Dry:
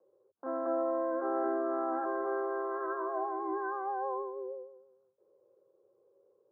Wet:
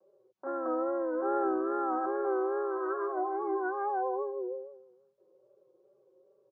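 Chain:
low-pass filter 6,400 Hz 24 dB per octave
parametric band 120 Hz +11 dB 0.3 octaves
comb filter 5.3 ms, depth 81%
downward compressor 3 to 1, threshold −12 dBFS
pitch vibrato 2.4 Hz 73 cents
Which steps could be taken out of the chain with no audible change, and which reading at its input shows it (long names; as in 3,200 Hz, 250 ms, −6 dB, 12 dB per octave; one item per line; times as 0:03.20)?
low-pass filter 6,400 Hz: nothing at its input above 1,700 Hz
downward compressor, threshold −12 dBFS: peak of its input −18.0 dBFS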